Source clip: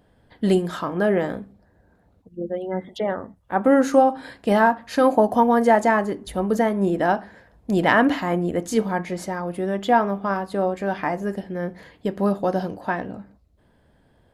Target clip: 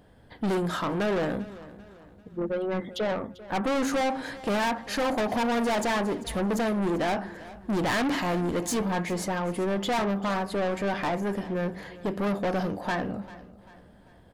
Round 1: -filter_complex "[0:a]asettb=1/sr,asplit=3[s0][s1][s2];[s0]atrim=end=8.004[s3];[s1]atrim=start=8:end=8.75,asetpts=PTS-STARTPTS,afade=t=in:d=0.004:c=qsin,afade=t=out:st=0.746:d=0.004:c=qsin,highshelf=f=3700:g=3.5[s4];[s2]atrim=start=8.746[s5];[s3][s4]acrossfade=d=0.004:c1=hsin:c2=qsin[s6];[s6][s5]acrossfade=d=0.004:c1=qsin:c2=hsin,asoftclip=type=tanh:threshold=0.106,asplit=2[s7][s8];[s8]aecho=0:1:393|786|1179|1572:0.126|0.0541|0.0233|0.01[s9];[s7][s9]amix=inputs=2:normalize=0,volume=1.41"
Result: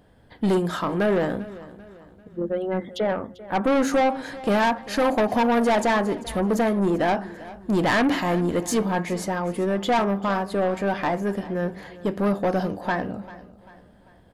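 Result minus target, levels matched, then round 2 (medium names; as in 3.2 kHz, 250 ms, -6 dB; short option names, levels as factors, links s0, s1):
saturation: distortion -4 dB
-filter_complex "[0:a]asettb=1/sr,asplit=3[s0][s1][s2];[s0]atrim=end=8.004[s3];[s1]atrim=start=8:end=8.75,asetpts=PTS-STARTPTS,afade=t=in:d=0.004:c=qsin,afade=t=out:st=0.746:d=0.004:c=qsin,highshelf=f=3700:g=3.5[s4];[s2]atrim=start=8.746[s5];[s3][s4]acrossfade=d=0.004:c1=hsin:c2=qsin[s6];[s6][s5]acrossfade=d=0.004:c1=qsin:c2=hsin,asoftclip=type=tanh:threshold=0.0447,asplit=2[s7][s8];[s8]aecho=0:1:393|786|1179|1572:0.126|0.0541|0.0233|0.01[s9];[s7][s9]amix=inputs=2:normalize=0,volume=1.41"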